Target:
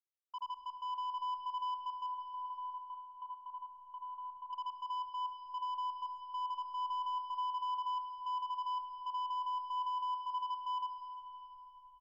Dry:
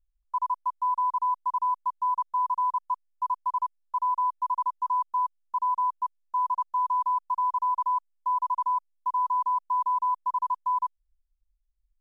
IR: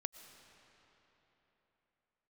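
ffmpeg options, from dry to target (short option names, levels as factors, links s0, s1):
-filter_complex "[0:a]lowpass=f=1100:p=1,asettb=1/sr,asplit=3[s0][s1][s2];[s0]atrim=end=2.064[s3];[s1]atrim=start=2.06:end=4.53,asetpts=PTS-STARTPTS,afade=t=in:d=0.004:c=qsin,afade=t=out:st=2.466:d=0.004:c=qsin,acompressor=threshold=0.00891:ratio=3[s4];[s2]atrim=start=4.526[s5];[s3][s4]acrossfade=d=0.004:c1=hsin:c2=qsin[s6];[s6][s5]acrossfade=d=0.004:c1=qsin:c2=hsin,asoftclip=type=tanh:threshold=0.0335,acrossover=split=190|750[s7][s8][s9];[s8]adelay=70[s10];[s7]adelay=430[s11];[s11][s10][s9]amix=inputs=3:normalize=0[s12];[1:a]atrim=start_sample=2205[s13];[s12][s13]afir=irnorm=-1:irlink=0,volume=0.668"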